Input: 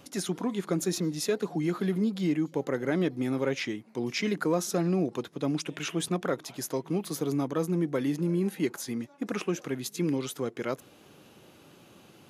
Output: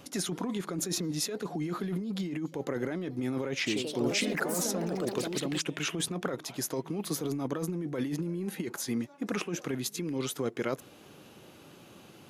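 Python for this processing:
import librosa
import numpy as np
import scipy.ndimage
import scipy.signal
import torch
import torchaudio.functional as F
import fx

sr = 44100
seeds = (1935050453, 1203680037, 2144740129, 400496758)

y = fx.over_compress(x, sr, threshold_db=-31.0, ratio=-1.0)
y = fx.echo_pitch(y, sr, ms=102, semitones=3, count=3, db_per_echo=-3.0, at=(3.56, 5.88))
y = F.gain(torch.from_numpy(y), -1.0).numpy()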